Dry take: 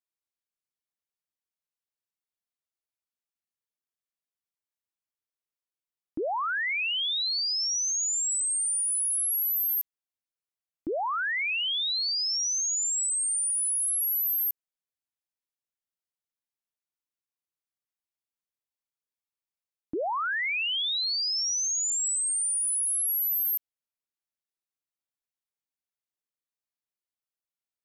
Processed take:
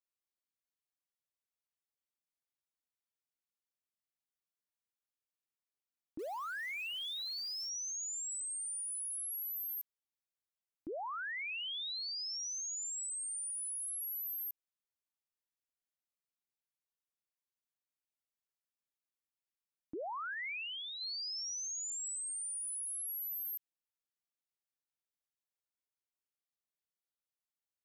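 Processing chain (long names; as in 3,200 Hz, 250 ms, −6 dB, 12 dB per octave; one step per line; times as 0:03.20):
0:20.34–0:21.01: parametric band 5,300 Hz −11.5 dB 2.3 octaves
brickwall limiter −31.5 dBFS, peak gain reduction 7.5 dB
0:06.19–0:07.69: floating-point word with a short mantissa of 2 bits
level −6 dB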